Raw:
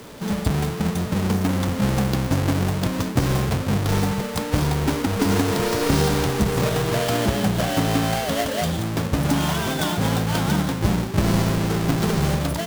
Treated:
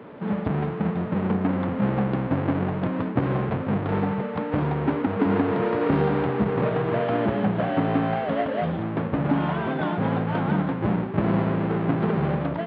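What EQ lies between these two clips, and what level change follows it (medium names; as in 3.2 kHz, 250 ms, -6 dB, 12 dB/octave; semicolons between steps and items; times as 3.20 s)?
Gaussian low-pass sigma 3.9 samples; high-pass 150 Hz 12 dB/octave; 0.0 dB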